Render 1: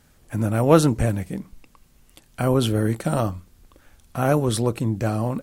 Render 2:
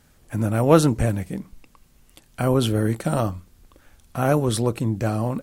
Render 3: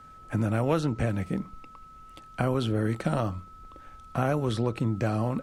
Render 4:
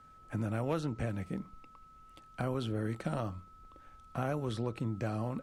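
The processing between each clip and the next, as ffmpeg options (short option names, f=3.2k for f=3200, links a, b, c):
-af anull
-filter_complex "[0:a]aemphasis=mode=reproduction:type=50fm,acrossover=split=84|1600|6300[a][b][c][d];[a]acompressor=threshold=-43dB:ratio=4[e];[b]acompressor=threshold=-26dB:ratio=4[f];[c]acompressor=threshold=-40dB:ratio=4[g];[d]acompressor=threshold=-56dB:ratio=4[h];[e][f][g][h]amix=inputs=4:normalize=0,aeval=exprs='val(0)+0.00355*sin(2*PI*1300*n/s)':c=same,volume=1.5dB"
-af "asoftclip=type=hard:threshold=-13dB,volume=-8dB"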